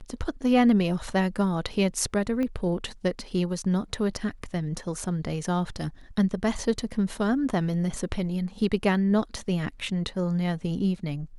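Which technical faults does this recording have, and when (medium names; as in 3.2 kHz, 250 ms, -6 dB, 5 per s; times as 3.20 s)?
2.43 s: pop -19 dBFS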